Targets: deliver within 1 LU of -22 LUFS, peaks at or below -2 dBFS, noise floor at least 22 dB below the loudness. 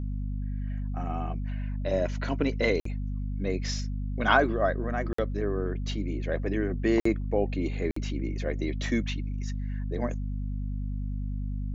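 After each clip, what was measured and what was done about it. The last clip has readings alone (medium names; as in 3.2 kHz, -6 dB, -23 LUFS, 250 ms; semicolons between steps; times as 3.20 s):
dropouts 4; longest dropout 54 ms; hum 50 Hz; highest harmonic 250 Hz; hum level -29 dBFS; loudness -30.0 LUFS; peak level -7.0 dBFS; loudness target -22.0 LUFS
-> interpolate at 2.80/5.13/7.00/7.91 s, 54 ms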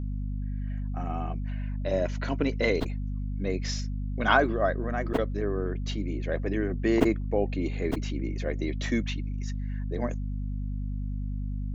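dropouts 0; hum 50 Hz; highest harmonic 250 Hz; hum level -29 dBFS
-> de-hum 50 Hz, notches 5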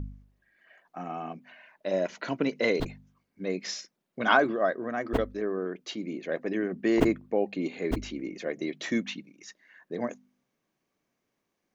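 hum not found; loudness -30.0 LUFS; peak level -8.0 dBFS; loudness target -22.0 LUFS
-> trim +8 dB; peak limiter -2 dBFS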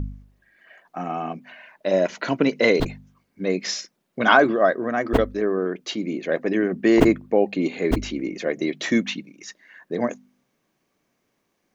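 loudness -22.5 LUFS; peak level -2.0 dBFS; noise floor -73 dBFS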